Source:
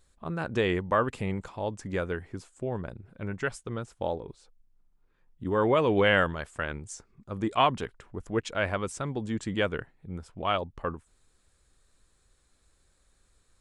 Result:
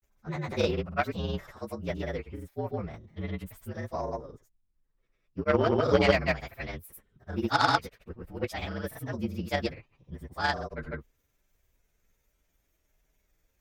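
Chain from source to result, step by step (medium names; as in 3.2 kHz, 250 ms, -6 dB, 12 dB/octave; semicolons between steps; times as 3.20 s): frequency axis rescaled in octaves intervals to 117%; granulator, pitch spread up and down by 0 st; Chebyshev shaper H 3 -15 dB, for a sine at -14.5 dBFS; trim +7.5 dB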